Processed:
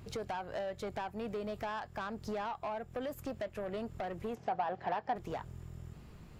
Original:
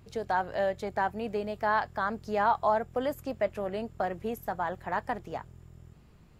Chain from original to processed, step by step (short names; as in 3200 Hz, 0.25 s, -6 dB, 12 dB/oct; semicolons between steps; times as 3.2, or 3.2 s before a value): tracing distortion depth 0.025 ms; compressor 12:1, threshold -36 dBFS, peak gain reduction 16.5 dB; soft clip -37 dBFS, distortion -12 dB; 4.35–5.16 speaker cabinet 140–5100 Hz, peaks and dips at 430 Hz +5 dB, 750 Hz +9 dB, 3700 Hz -3 dB; gain +4.5 dB